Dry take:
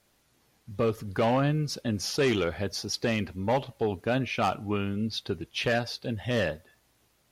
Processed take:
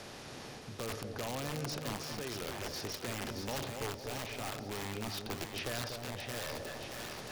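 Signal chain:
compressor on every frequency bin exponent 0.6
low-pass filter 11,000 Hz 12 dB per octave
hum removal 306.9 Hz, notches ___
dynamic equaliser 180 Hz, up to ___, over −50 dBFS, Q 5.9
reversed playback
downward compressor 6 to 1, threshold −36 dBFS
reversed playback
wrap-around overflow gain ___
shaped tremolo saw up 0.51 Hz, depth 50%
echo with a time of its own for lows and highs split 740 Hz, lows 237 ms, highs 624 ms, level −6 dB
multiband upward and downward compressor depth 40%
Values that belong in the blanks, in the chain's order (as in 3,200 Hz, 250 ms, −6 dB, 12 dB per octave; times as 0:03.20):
2, −8 dB, 30.5 dB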